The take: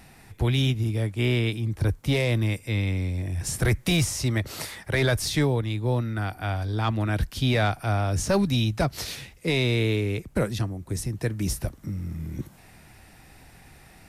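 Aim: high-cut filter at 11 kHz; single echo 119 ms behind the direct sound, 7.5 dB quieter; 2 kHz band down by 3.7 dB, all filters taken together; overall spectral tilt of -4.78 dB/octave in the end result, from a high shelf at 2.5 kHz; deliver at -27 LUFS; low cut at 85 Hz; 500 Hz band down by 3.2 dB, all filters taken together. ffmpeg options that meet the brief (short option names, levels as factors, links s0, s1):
-af "highpass=85,lowpass=11000,equalizer=f=500:t=o:g=-4,equalizer=f=2000:t=o:g=-6.5,highshelf=f=2500:g=4,aecho=1:1:119:0.422,volume=0.944"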